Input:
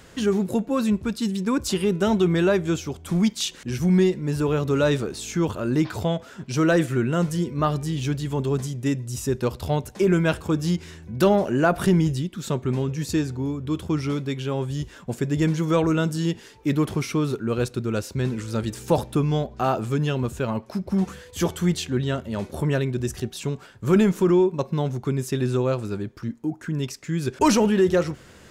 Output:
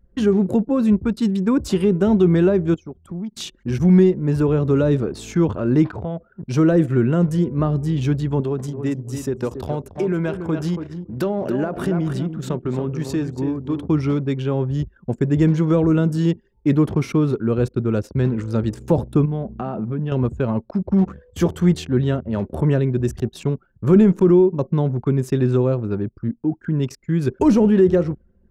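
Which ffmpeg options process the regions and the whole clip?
ffmpeg -i in.wav -filter_complex "[0:a]asettb=1/sr,asplit=3[link_01][link_02][link_03];[link_01]atrim=end=2.744[link_04];[link_02]atrim=start=2.74:end=3.33,asetpts=PTS-STARTPTS,afade=type=in:duration=0.004:curve=qsin,afade=type=out:start_time=0.586:duration=0.004:curve=qsin,lowshelf=frequency=120:gain=-8,acompressor=threshold=-37dB:ratio=2.5:attack=3.2:release=140:knee=1:detection=peak[link_05];[link_03]atrim=start=3.326[link_06];[link_04][link_05]acrossfade=duration=0.004:curve1=hsin:curve2=qsin[link_07];[link_07][link_06]acrossfade=duration=0.004:curve1=qsin:curve2=hsin,asettb=1/sr,asplit=3[link_08][link_09][link_10];[link_08]atrim=end=5.904[link_11];[link_09]atrim=start=5.9:end=6.43,asetpts=PTS-STARTPTS,afade=type=in:duration=0.004:curve=qsin,afade=type=out:start_time=0.526:duration=0.004:curve=qsin,highshelf=frequency=2700:gain=-6,bandreject=frequency=50:width_type=h:width=6,bandreject=frequency=100:width_type=h:width=6,bandreject=frequency=150:width_type=h:width=6,bandreject=frequency=200:width_type=h:width=6,bandreject=frequency=250:width_type=h:width=6,bandreject=frequency=300:width_type=h:width=6,bandreject=frequency=350:width_type=h:width=6,acompressor=threshold=-32dB:ratio=2.5:attack=3.2:release=140:knee=1:detection=peak[link_12];[link_10]atrim=start=6.426[link_13];[link_11][link_12]acrossfade=duration=0.004:curve1=hsin:curve2=qsin[link_14];[link_14][link_13]acrossfade=duration=0.004:curve1=qsin:curve2=hsin,asettb=1/sr,asplit=3[link_15][link_16][link_17];[link_15]atrim=end=8.404[link_18];[link_16]atrim=start=8.4:end=13.88,asetpts=PTS-STARTPTS,afade=type=in:duration=0.004:curve=qsin,afade=type=out:start_time=5.476:duration=0.004:curve=qsin,lowshelf=frequency=120:gain=-11.5,acompressor=threshold=-24dB:ratio=3:attack=3.2:release=140:knee=1:detection=peak,aecho=1:1:281|562|843:0.376|0.0977|0.0254,atrim=end_sample=241668[link_19];[link_17]atrim=start=13.876[link_20];[link_18][link_19]acrossfade=duration=0.004:curve1=hsin:curve2=qsin[link_21];[link_21][link_20]acrossfade=duration=0.004:curve1=qsin:curve2=hsin,asettb=1/sr,asplit=3[link_22][link_23][link_24];[link_22]atrim=end=19.254[link_25];[link_23]atrim=start=19.25:end=20.12,asetpts=PTS-STARTPTS,afade=type=in:duration=0.004:curve=qsin,afade=type=out:start_time=0.866:duration=0.004:curve=qsin,lowpass=4400,equalizer=frequency=200:width=4:gain=14,acompressor=threshold=-29dB:ratio=3:attack=3.2:release=140:knee=1:detection=peak[link_26];[link_24]atrim=start=20.116[link_27];[link_25][link_26]acrossfade=duration=0.004:curve1=hsin:curve2=qsin[link_28];[link_28][link_27]acrossfade=duration=0.004:curve1=qsin:curve2=hsin,anlmdn=2.51,highshelf=frequency=2200:gain=-11,acrossover=split=490[link_29][link_30];[link_30]acompressor=threshold=-34dB:ratio=4[link_31];[link_29][link_31]amix=inputs=2:normalize=0,volume=6dB" out.wav

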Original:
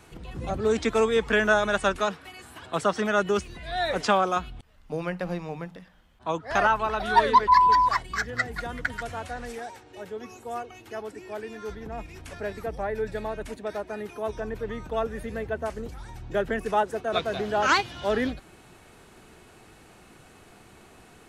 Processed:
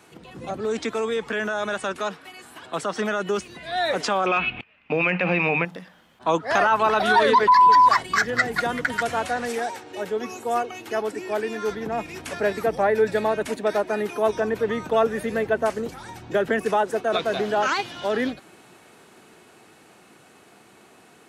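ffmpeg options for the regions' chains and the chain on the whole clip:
ffmpeg -i in.wav -filter_complex "[0:a]asettb=1/sr,asplit=3[link_01][link_02][link_03];[link_01]atrim=end=4.264[link_04];[link_02]atrim=start=4.26:end=5.65,asetpts=PTS-STARTPTS,afade=type=in:duration=0.004:curve=qsin,afade=type=out:start_time=1.386:duration=0.004:curve=qsin,agate=range=-12dB:threshold=-50dB:ratio=16:release=100:detection=peak,lowpass=frequency=2500:width_type=q:width=10,acontrast=46[link_05];[link_03]atrim=start=5.646[link_06];[link_04][link_05]acrossfade=duration=0.004:curve1=hsin:curve2=qsin[link_07];[link_07][link_06]acrossfade=duration=0.004:curve1=qsin:curve2=hsin,alimiter=limit=-18.5dB:level=0:latency=1:release=36,highpass=180,dynaudnorm=framelen=320:gausssize=31:maxgain=9dB,volume=1dB" out.wav

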